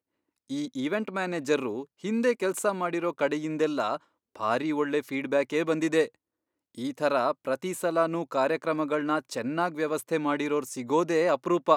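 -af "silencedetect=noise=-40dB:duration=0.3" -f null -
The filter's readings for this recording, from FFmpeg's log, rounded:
silence_start: 0.00
silence_end: 0.50 | silence_duration: 0.50
silence_start: 3.97
silence_end: 4.35 | silence_duration: 0.39
silence_start: 6.08
silence_end: 6.78 | silence_duration: 0.70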